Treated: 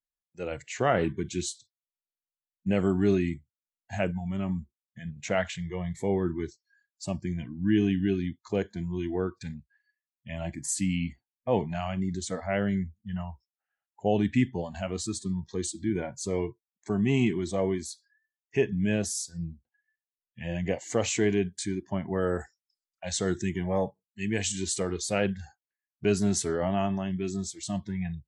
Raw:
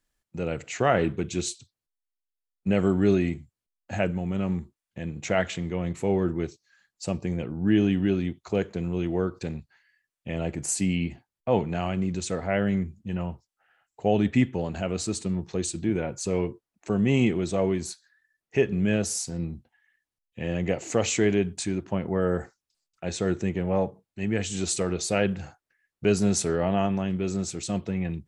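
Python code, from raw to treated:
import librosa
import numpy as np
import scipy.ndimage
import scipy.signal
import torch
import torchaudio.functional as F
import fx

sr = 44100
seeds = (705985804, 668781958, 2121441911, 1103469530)

y = fx.noise_reduce_blind(x, sr, reduce_db=21)
y = fx.high_shelf(y, sr, hz=2800.0, db=9.0, at=(22.13, 24.52))
y = y * librosa.db_to_amplitude(-2.5)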